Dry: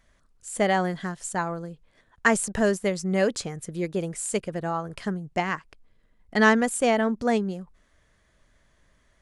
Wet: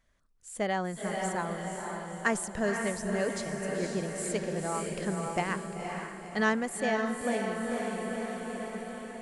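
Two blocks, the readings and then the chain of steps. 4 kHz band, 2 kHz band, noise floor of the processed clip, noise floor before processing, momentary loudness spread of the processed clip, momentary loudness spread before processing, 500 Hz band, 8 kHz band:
-5.5 dB, -6.0 dB, -47 dBFS, -65 dBFS, 8 LU, 12 LU, -5.5 dB, -5.0 dB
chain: echo that smears into a reverb 507 ms, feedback 57%, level -3.5 dB; gain riding within 5 dB 2 s; trim -8 dB

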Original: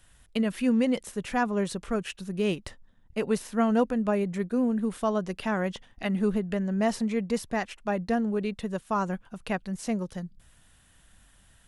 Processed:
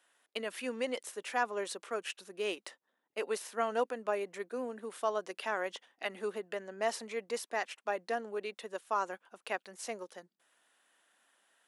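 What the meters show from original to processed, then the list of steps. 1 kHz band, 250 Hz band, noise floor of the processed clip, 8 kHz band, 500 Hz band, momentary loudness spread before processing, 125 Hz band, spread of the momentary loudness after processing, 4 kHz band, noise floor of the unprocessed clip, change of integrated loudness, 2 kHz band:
-4.0 dB, -20.5 dB, -84 dBFS, -2.5 dB, -6.0 dB, 9 LU, under -25 dB, 8 LU, -3.0 dB, -60 dBFS, -8.5 dB, -3.0 dB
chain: high-pass 330 Hz 24 dB/octave; bass shelf 460 Hz -7 dB; tape noise reduction on one side only decoder only; trim -2.5 dB

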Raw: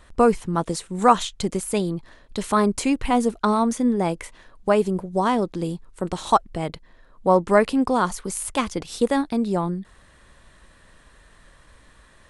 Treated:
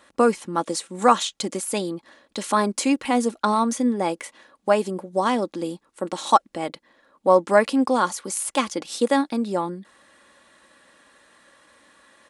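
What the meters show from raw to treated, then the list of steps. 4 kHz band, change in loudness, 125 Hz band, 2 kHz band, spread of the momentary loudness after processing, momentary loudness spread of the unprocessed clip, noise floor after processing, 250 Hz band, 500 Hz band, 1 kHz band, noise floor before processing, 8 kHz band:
+2.5 dB, -0.5 dB, -7.5 dB, +1.5 dB, 13 LU, 12 LU, -67 dBFS, -1.5 dB, 0.0 dB, 0.0 dB, -54 dBFS, +2.5 dB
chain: high-pass 250 Hz 12 dB/octave; dynamic bell 5.7 kHz, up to +3 dB, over -41 dBFS, Q 0.8; comb 3.6 ms, depth 40%

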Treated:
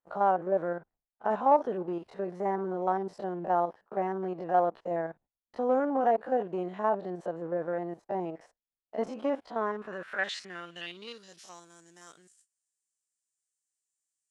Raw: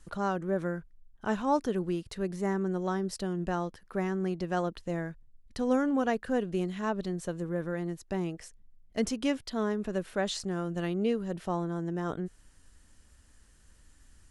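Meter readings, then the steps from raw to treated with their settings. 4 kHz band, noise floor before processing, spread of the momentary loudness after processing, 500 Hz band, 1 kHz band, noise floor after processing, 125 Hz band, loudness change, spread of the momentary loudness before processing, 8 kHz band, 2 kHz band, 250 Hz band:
-3.5 dB, -60 dBFS, 15 LU, +2.0 dB, +6.5 dB, under -85 dBFS, -9.5 dB, +1.0 dB, 8 LU, under -10 dB, +0.5 dB, -6.0 dB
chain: spectrogram pixelated in time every 50 ms; gate -52 dBFS, range -20 dB; waveshaping leveller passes 1; band-pass sweep 740 Hz -> 7.7 kHz, 9.41–11.69 s; trim +8 dB

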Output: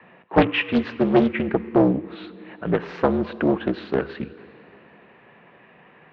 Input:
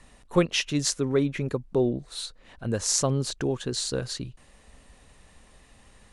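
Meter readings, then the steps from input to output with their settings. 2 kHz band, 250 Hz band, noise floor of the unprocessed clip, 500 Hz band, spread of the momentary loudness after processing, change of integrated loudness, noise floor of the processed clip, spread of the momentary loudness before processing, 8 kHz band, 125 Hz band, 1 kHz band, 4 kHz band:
+7.5 dB, +8.0 dB, -56 dBFS, +5.5 dB, 16 LU, +5.0 dB, -52 dBFS, 12 LU, under -35 dB, 0.0 dB, +11.0 dB, -4.5 dB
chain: in parallel at -6.5 dB: overload inside the chain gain 21 dB; on the sum: plate-style reverb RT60 2.5 s, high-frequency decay 1×, DRR 14 dB; mistuned SSB -54 Hz 220–2700 Hz; loudspeaker Doppler distortion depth 0.69 ms; trim +5.5 dB

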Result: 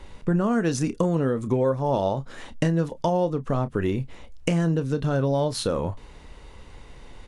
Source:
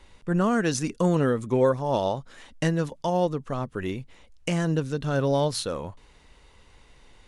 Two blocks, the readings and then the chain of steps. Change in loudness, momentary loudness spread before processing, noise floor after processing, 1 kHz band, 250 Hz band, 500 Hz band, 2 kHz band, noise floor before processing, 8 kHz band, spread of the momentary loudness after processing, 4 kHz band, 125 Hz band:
+1.0 dB, 10 LU, -46 dBFS, 0.0 dB, +2.0 dB, +0.5 dB, -2.0 dB, -56 dBFS, -1.5 dB, 8 LU, -1.0 dB, +2.5 dB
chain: tilt shelf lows +3.5 dB, about 1.2 kHz; compression 4:1, threshold -28 dBFS, peak gain reduction 12 dB; doubling 30 ms -13 dB; trim +7 dB

